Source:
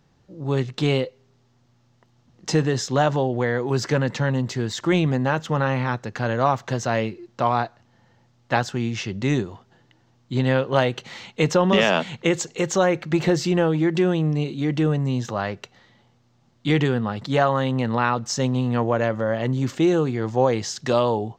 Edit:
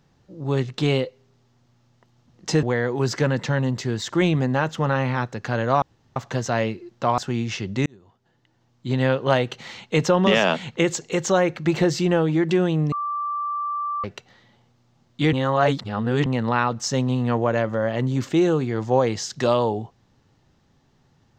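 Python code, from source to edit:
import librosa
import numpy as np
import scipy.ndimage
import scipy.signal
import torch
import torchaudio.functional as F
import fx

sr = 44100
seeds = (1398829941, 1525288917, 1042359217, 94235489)

y = fx.edit(x, sr, fx.cut(start_s=2.63, length_s=0.71),
    fx.insert_room_tone(at_s=6.53, length_s=0.34),
    fx.cut(start_s=7.55, length_s=1.09),
    fx.fade_in_span(start_s=9.32, length_s=1.25),
    fx.bleep(start_s=14.38, length_s=1.12, hz=1170.0, db=-23.5),
    fx.reverse_span(start_s=16.79, length_s=0.93), tone=tone)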